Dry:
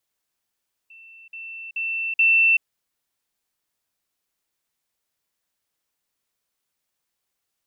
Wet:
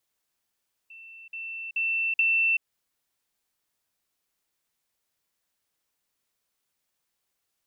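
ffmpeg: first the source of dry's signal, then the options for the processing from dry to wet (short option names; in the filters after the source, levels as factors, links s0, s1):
-f lavfi -i "aevalsrc='pow(10,(-43.5+10*floor(t/0.43))/20)*sin(2*PI*2680*t)*clip(min(mod(t,0.43),0.38-mod(t,0.43))/0.005,0,1)':d=1.72:s=44100"
-af "acompressor=threshold=0.0794:ratio=6"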